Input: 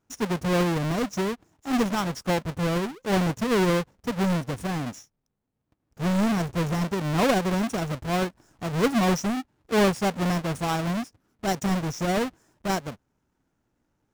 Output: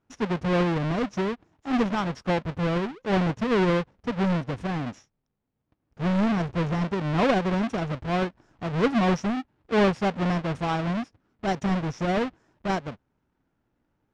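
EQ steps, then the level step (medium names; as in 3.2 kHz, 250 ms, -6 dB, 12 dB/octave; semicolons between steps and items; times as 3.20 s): low-pass 3.6 kHz 12 dB/octave; 0.0 dB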